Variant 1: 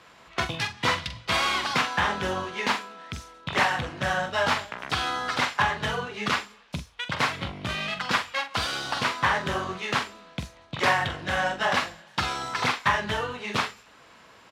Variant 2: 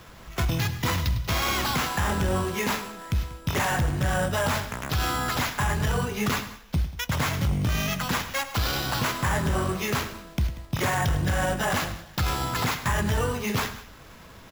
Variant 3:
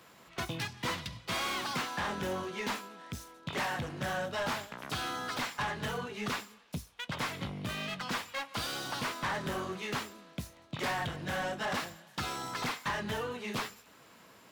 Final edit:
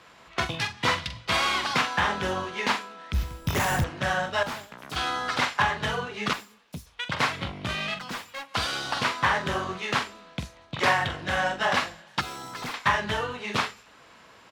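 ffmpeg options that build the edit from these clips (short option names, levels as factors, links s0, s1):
-filter_complex "[2:a]asplit=4[s0][s1][s2][s3];[0:a]asplit=6[s4][s5][s6][s7][s8][s9];[s4]atrim=end=3.142[s10];[1:a]atrim=start=3.138:end=3.842[s11];[s5]atrim=start=3.838:end=4.432[s12];[s0]atrim=start=4.428:end=4.962[s13];[s6]atrim=start=4.958:end=6.332[s14];[s1]atrim=start=6.328:end=6.862[s15];[s7]atrim=start=6.858:end=7.992[s16];[s2]atrim=start=7.988:end=8.542[s17];[s8]atrim=start=8.538:end=12.212[s18];[s3]atrim=start=12.208:end=12.742[s19];[s9]atrim=start=12.738[s20];[s10][s11]acrossfade=d=0.004:c1=hsin:c2=hsin[s21];[s21][s12]acrossfade=d=0.004:c1=hsin:c2=hsin[s22];[s22][s13]acrossfade=d=0.004:c1=hsin:c2=hsin[s23];[s23][s14]acrossfade=d=0.004:c1=hsin:c2=hsin[s24];[s24][s15]acrossfade=d=0.004:c1=hsin:c2=hsin[s25];[s25][s16]acrossfade=d=0.004:c1=hsin:c2=hsin[s26];[s26][s17]acrossfade=d=0.004:c1=hsin:c2=hsin[s27];[s27][s18]acrossfade=d=0.004:c1=hsin:c2=hsin[s28];[s28][s19]acrossfade=d=0.004:c1=hsin:c2=hsin[s29];[s29][s20]acrossfade=d=0.004:c1=hsin:c2=hsin"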